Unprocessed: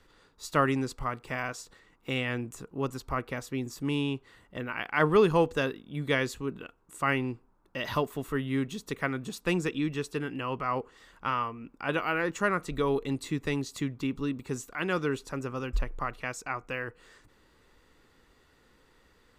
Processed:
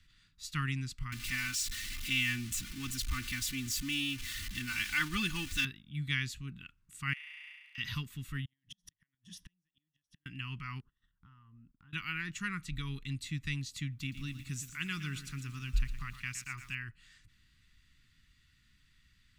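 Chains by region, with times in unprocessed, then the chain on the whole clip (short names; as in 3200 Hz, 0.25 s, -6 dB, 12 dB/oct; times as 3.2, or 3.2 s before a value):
1.12–5.65 zero-crossing step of -35 dBFS + high shelf 4900 Hz +6.5 dB + comb 3.4 ms, depth 81%
7.13–7.78 Chebyshev high-pass 690 Hz, order 5 + flutter echo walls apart 5.8 m, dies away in 1.3 s + compressor, threshold -41 dBFS
8.45–10.26 ripple EQ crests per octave 1.2, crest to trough 13 dB + compressor 2.5:1, threshold -44 dBFS + flipped gate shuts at -34 dBFS, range -38 dB
10.8–11.93 gate -55 dBFS, range -17 dB + running mean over 19 samples + compressor 5:1, threshold -48 dBFS
13.92–16.75 high shelf 8400 Hz +9.5 dB + lo-fi delay 0.116 s, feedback 55%, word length 8-bit, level -11 dB
whole clip: Chebyshev band-stop 140–2400 Hz, order 2; high shelf 7300 Hz -6 dB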